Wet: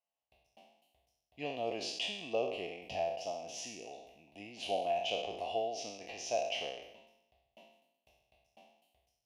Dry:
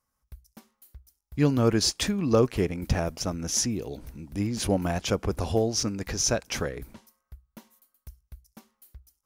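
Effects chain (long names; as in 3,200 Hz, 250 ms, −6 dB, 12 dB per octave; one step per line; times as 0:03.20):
peak hold with a decay on every bin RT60 0.84 s
pair of resonant band-passes 1,400 Hz, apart 2 octaves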